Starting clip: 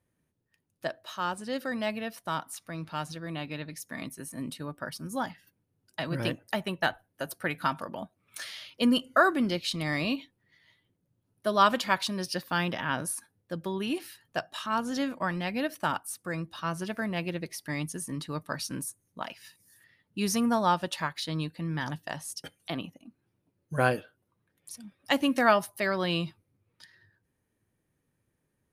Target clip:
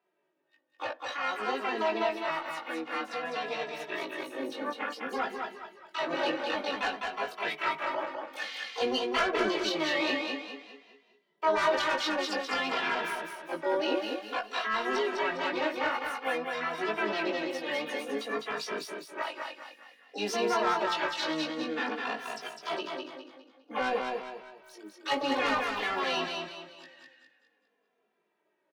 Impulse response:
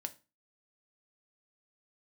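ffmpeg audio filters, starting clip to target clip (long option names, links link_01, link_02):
-filter_complex "[0:a]asplit=3[link_01][link_02][link_03];[link_02]asetrate=66075,aresample=44100,atempo=0.66742,volume=-4dB[link_04];[link_03]asetrate=88200,aresample=44100,atempo=0.5,volume=-10dB[link_05];[link_01][link_04][link_05]amix=inputs=3:normalize=0,asplit=2[link_06][link_07];[link_07]adynamicsmooth=sensitivity=5.5:basefreq=3200,volume=1.5dB[link_08];[link_06][link_08]amix=inputs=2:normalize=0,highpass=frequency=200:width=0.5412,highpass=frequency=200:width=1.3066,acrossover=split=340 5300:gain=0.0794 1 0.126[link_09][link_10][link_11];[link_09][link_10][link_11]amix=inputs=3:normalize=0,asoftclip=type=tanh:threshold=-12.5dB,alimiter=limit=-21dB:level=0:latency=1:release=32,asplit=2[link_12][link_13];[link_13]adelay=19,volume=-4dB[link_14];[link_12][link_14]amix=inputs=2:normalize=0,asplit=2[link_15][link_16];[link_16]aecho=0:1:204|408|612|816|1020:0.631|0.246|0.096|0.0374|0.0146[link_17];[link_15][link_17]amix=inputs=2:normalize=0,asplit=2[link_18][link_19];[link_19]adelay=2.6,afreqshift=-0.53[link_20];[link_18][link_20]amix=inputs=2:normalize=1"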